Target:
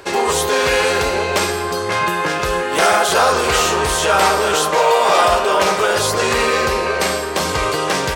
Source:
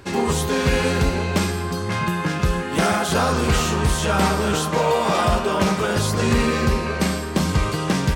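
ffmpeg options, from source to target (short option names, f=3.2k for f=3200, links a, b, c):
-filter_complex "[0:a]lowshelf=f=310:t=q:w=1.5:g=-11.5,acrossover=split=660[a][b];[a]alimiter=limit=-21.5dB:level=0:latency=1[c];[c][b]amix=inputs=2:normalize=0,volume=7dB"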